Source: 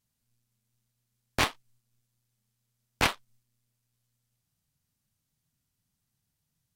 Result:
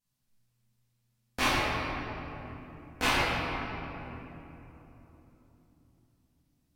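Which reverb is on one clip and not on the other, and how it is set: simulated room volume 210 m³, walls hard, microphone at 1.9 m; trim -9 dB

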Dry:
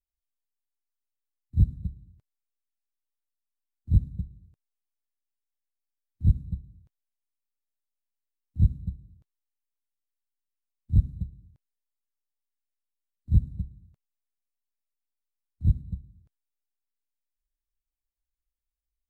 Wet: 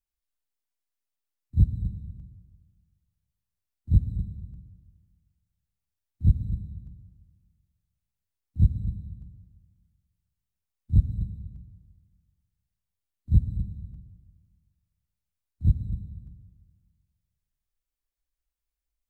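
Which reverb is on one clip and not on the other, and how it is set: plate-style reverb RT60 1.6 s, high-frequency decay 0.8×, pre-delay 105 ms, DRR 9.5 dB; trim +1 dB

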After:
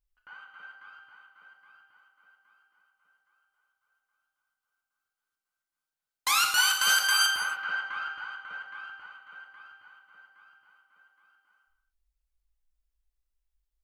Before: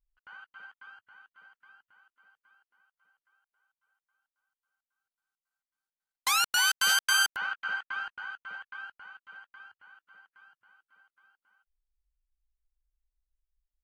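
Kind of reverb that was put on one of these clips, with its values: gated-style reverb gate 320 ms falling, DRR 2 dB

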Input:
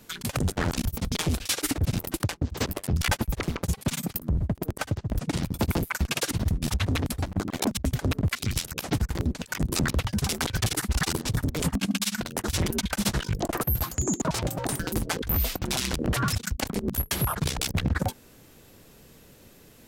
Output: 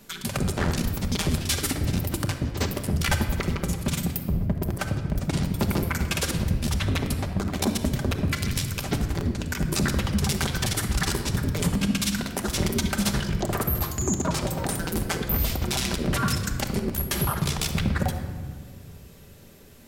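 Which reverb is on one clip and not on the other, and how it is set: simulated room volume 2300 m³, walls mixed, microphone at 1.2 m

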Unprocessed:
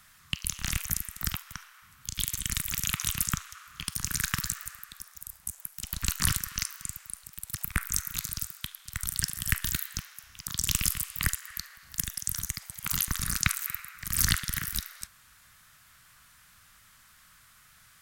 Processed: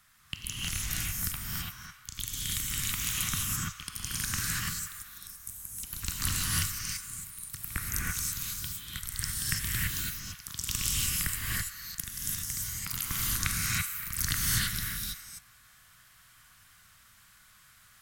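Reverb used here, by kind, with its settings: gated-style reverb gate 360 ms rising, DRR -4.5 dB; trim -6.5 dB

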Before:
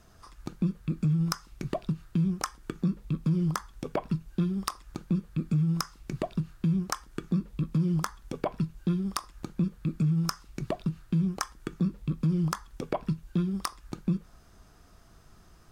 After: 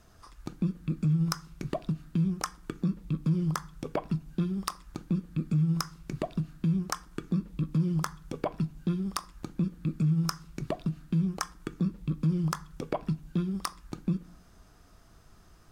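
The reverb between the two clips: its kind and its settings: FDN reverb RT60 0.62 s, low-frequency decay 1.6×, high-frequency decay 0.6×, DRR 19.5 dB; trim -1 dB

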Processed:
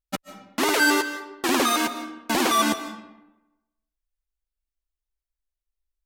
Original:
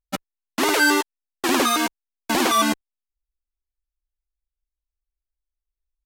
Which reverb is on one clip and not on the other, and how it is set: algorithmic reverb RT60 0.99 s, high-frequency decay 0.65×, pre-delay 105 ms, DRR 11 dB; trim -2 dB

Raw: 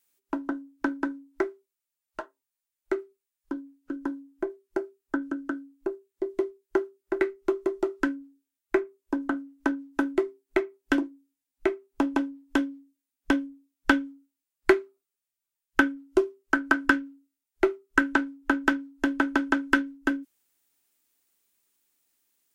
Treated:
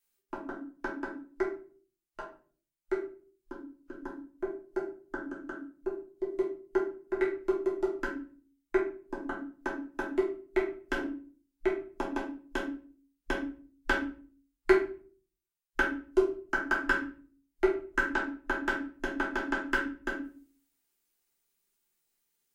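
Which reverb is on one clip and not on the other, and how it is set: simulated room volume 32 m³, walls mixed, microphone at 0.83 m; trim -9.5 dB

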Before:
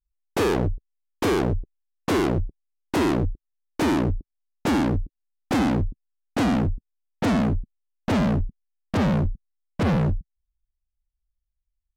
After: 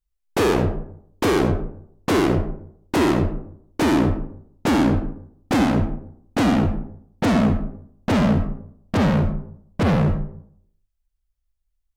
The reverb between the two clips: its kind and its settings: algorithmic reverb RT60 0.65 s, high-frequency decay 0.45×, pre-delay 25 ms, DRR 7.5 dB; trim +3 dB

